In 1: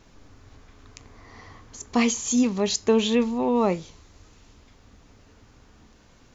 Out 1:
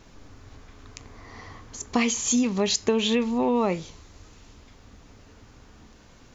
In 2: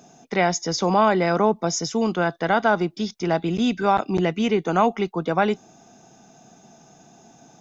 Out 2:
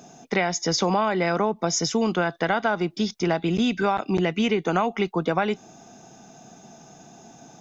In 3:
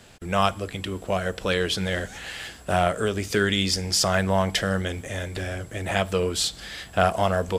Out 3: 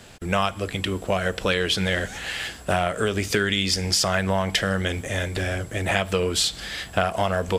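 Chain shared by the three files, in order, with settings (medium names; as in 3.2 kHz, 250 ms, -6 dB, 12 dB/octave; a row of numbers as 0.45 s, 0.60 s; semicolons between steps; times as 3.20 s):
dynamic bell 2.4 kHz, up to +4 dB, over -37 dBFS, Q 0.99; compression 6:1, threshold -22 dBFS; normalise loudness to -24 LUFS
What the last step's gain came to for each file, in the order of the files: +3.0 dB, +3.0 dB, +4.0 dB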